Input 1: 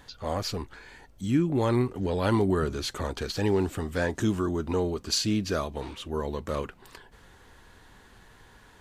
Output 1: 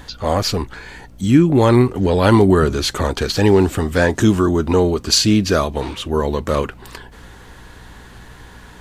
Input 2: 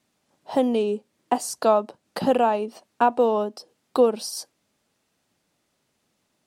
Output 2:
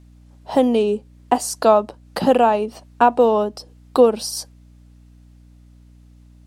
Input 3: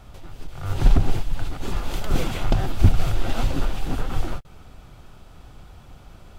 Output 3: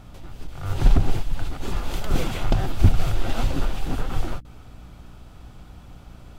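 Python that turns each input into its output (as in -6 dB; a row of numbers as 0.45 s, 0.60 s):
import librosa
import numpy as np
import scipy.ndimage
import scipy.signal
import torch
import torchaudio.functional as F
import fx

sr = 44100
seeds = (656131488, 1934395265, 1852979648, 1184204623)

y = fx.add_hum(x, sr, base_hz=60, snr_db=27)
y = y * 10.0 ** (-1.5 / 20.0) / np.max(np.abs(y))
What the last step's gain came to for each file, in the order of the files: +12.5 dB, +5.0 dB, -0.5 dB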